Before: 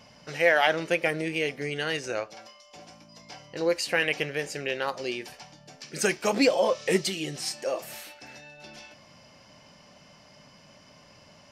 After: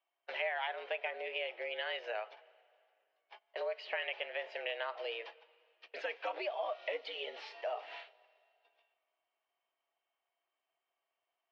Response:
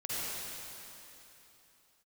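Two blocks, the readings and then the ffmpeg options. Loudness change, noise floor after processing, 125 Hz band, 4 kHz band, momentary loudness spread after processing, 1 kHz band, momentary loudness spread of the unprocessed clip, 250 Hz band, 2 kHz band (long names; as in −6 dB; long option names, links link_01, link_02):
−12.5 dB, below −85 dBFS, below −40 dB, −11.0 dB, 8 LU, −10.0 dB, 22 LU, −30.0 dB, −12.0 dB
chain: -filter_complex "[0:a]agate=range=-30dB:threshold=-41dB:ratio=16:detection=peak,acompressor=threshold=-33dB:ratio=5,crystalizer=i=1:c=0,highpass=frequency=350:width_type=q:width=0.5412,highpass=frequency=350:width_type=q:width=1.307,lowpass=frequency=3400:width_type=q:width=0.5176,lowpass=frequency=3400:width_type=q:width=0.7071,lowpass=frequency=3400:width_type=q:width=1.932,afreqshift=100,asplit=2[link_01][link_02];[1:a]atrim=start_sample=2205,asetrate=61740,aresample=44100,adelay=96[link_03];[link_02][link_03]afir=irnorm=-1:irlink=0,volume=-25dB[link_04];[link_01][link_04]amix=inputs=2:normalize=0,volume=-2dB"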